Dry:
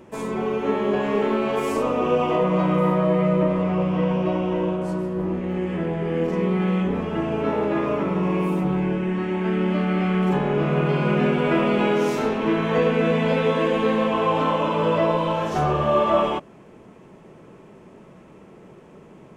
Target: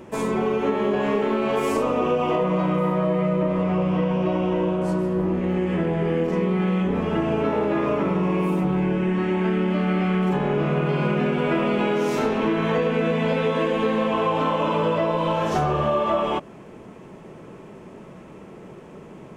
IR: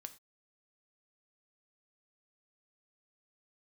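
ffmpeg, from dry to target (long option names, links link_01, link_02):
-af "acompressor=threshold=-23dB:ratio=6,volume=4.5dB"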